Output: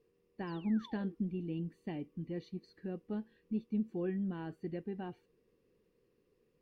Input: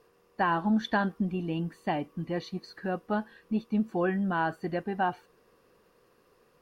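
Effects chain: high-order bell 970 Hz -13 dB; painted sound fall, 0.47–1.15 s, 310–5300 Hz -47 dBFS; treble shelf 2.1 kHz -11.5 dB; trim -6.5 dB

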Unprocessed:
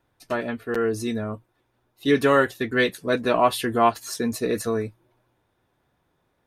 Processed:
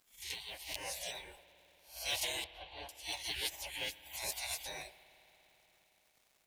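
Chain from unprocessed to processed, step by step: reverse spectral sustain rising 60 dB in 0.38 s; high-pass 67 Hz 12 dB/octave; spectral gate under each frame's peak -30 dB weak; treble shelf 5.7 kHz -5.5 dB; in parallel at +2 dB: compression, threshold -56 dBFS, peak gain reduction 18.5 dB; on the sum: static phaser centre 530 Hz, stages 4; modulation noise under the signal 23 dB; crackle 290 per s -63 dBFS; 2.44–2.89 s: distance through air 470 m; on a send at -14.5 dB: reverberation RT60 4.5 s, pre-delay 57 ms; on the sum: trim +5.5 dB

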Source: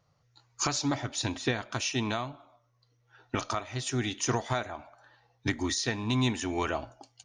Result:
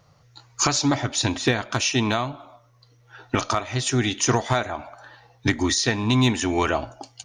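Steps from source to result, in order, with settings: in parallel at 0 dB: compression 10:1, threshold -42 dBFS, peak gain reduction 19 dB; on the sum: hard clipper -17 dBFS, distortion -37 dB; trim +7 dB

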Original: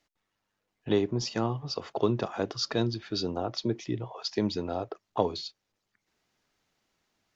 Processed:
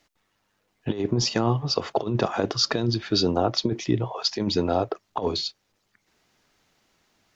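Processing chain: compressor with a negative ratio -29 dBFS, ratio -0.5; trim +7.5 dB

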